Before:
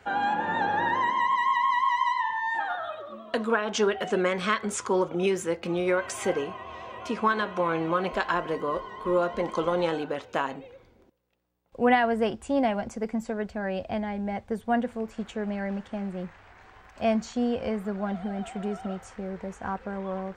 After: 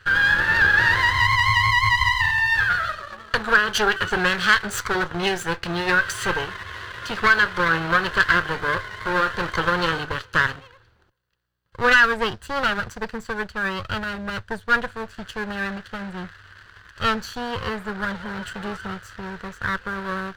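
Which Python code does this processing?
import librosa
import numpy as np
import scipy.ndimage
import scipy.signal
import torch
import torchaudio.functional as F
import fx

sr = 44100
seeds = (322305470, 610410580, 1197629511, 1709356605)

y = fx.lower_of_two(x, sr, delay_ms=0.65)
y = fx.graphic_eq_15(y, sr, hz=(100, 250, 1600, 4000), db=(9, -11, 10, 9))
y = fx.leveller(y, sr, passes=1)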